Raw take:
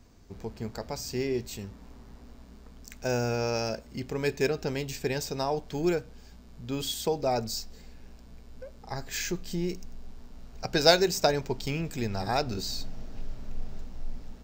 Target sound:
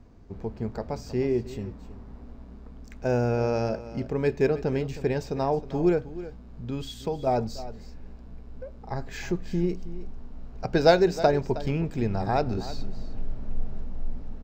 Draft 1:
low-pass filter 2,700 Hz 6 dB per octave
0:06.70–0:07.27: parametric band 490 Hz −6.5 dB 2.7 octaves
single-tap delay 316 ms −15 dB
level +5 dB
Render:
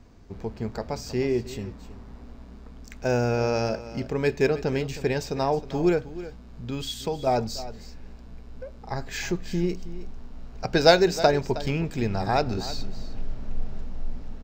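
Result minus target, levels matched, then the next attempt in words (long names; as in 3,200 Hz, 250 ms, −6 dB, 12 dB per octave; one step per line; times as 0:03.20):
2,000 Hz band +3.5 dB
low-pass filter 960 Hz 6 dB per octave
0:06.70–0:07.27: parametric band 490 Hz −6.5 dB 2.7 octaves
single-tap delay 316 ms −15 dB
level +5 dB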